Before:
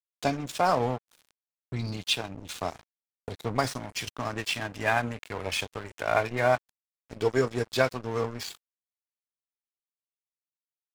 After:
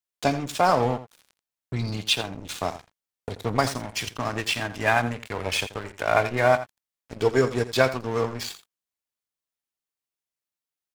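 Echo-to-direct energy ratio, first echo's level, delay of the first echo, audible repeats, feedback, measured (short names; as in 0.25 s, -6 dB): -14.0 dB, -14.0 dB, 84 ms, 1, no steady repeat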